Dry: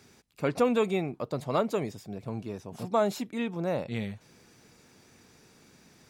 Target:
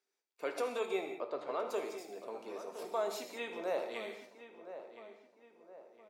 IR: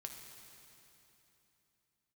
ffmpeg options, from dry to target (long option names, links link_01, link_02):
-filter_complex "[0:a]asettb=1/sr,asplit=3[link_01][link_02][link_03];[link_01]atrim=end=1.144[link_04];[link_02]atrim=start=1.14:end=1.67,asetpts=PTS-STARTPTS,afade=type=in:duration=0.004:curve=qsin,afade=type=out:start_time=0.526:duration=0.004:curve=qsin,lowpass=3000[link_05];[link_03]atrim=start=1.666[link_06];[link_04][link_05]acrossfade=duration=0.004:curve1=hsin:curve2=qsin[link_07];[link_07][link_06]acrossfade=duration=0.004:curve1=qsin:curve2=hsin,agate=range=-24dB:threshold=-50dB:ratio=16:detection=peak,highpass=frequency=370:width=0.5412,highpass=frequency=370:width=1.3066,alimiter=limit=-22dB:level=0:latency=1:release=207,asplit=2[link_08][link_09];[link_09]adelay=1016,lowpass=frequency=2000:poles=1,volume=-11.5dB,asplit=2[link_10][link_11];[link_11]adelay=1016,lowpass=frequency=2000:poles=1,volume=0.45,asplit=2[link_12][link_13];[link_13]adelay=1016,lowpass=frequency=2000:poles=1,volume=0.45,asplit=2[link_14][link_15];[link_15]adelay=1016,lowpass=frequency=2000:poles=1,volume=0.45,asplit=2[link_16][link_17];[link_17]adelay=1016,lowpass=frequency=2000:poles=1,volume=0.45[link_18];[link_08][link_10][link_12][link_14][link_16][link_18]amix=inputs=6:normalize=0[link_19];[1:a]atrim=start_sample=2205,afade=type=out:start_time=0.25:duration=0.01,atrim=end_sample=11466[link_20];[link_19][link_20]afir=irnorm=-1:irlink=0,volume=1.5dB"